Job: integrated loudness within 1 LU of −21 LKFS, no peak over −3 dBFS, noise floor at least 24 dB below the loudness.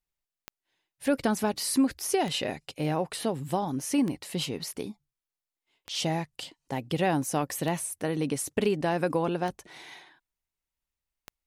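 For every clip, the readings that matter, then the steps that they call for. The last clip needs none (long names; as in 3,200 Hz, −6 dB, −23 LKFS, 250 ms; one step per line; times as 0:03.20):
number of clicks 7; integrated loudness −29.5 LKFS; sample peak −12.0 dBFS; target loudness −21.0 LKFS
→ click removal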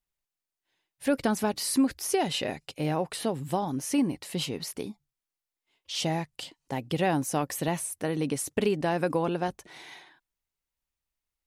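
number of clicks 0; integrated loudness −29.5 LKFS; sample peak −12.0 dBFS; target loudness −21.0 LKFS
→ level +8.5 dB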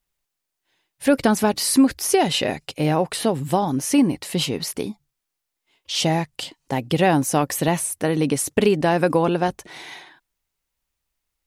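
integrated loudness −21.0 LKFS; sample peak −3.5 dBFS; background noise floor −81 dBFS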